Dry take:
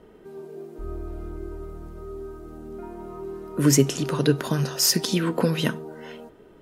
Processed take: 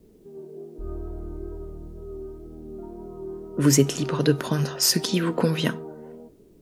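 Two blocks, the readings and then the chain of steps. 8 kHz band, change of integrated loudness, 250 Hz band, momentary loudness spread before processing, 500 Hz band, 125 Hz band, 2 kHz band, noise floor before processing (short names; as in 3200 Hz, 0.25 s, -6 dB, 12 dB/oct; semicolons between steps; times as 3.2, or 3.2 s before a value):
-0.5 dB, 0.0 dB, 0.0 dB, 20 LU, 0.0 dB, 0.0 dB, 0.0 dB, -51 dBFS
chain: low-pass opened by the level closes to 300 Hz, open at -19 dBFS; requantised 12-bit, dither triangular; wow and flutter 28 cents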